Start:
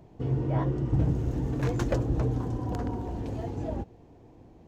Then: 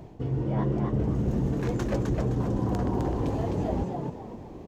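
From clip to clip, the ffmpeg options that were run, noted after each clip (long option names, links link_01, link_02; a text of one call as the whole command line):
ffmpeg -i in.wav -filter_complex "[0:a]areverse,acompressor=threshold=-34dB:ratio=6,areverse,asplit=5[link_01][link_02][link_03][link_04][link_05];[link_02]adelay=258,afreqshift=77,volume=-4dB[link_06];[link_03]adelay=516,afreqshift=154,volume=-13.4dB[link_07];[link_04]adelay=774,afreqshift=231,volume=-22.7dB[link_08];[link_05]adelay=1032,afreqshift=308,volume=-32.1dB[link_09];[link_01][link_06][link_07][link_08][link_09]amix=inputs=5:normalize=0,volume=8.5dB" out.wav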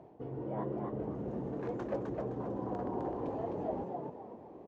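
ffmpeg -i in.wav -af "bandpass=frequency=630:width_type=q:width=0.87:csg=0,volume=-4dB" out.wav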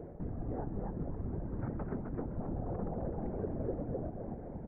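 ffmpeg -i in.wav -af "acompressor=threshold=-46dB:ratio=3,afftfilt=real='hypot(re,im)*cos(2*PI*random(0))':imag='hypot(re,im)*sin(2*PI*random(1))':win_size=512:overlap=0.75,highpass=frequency=150:width_type=q:width=0.5412,highpass=frequency=150:width_type=q:width=1.307,lowpass=frequency=2200:width_type=q:width=0.5176,lowpass=frequency=2200:width_type=q:width=0.7071,lowpass=frequency=2200:width_type=q:width=1.932,afreqshift=-250,volume=15.5dB" out.wav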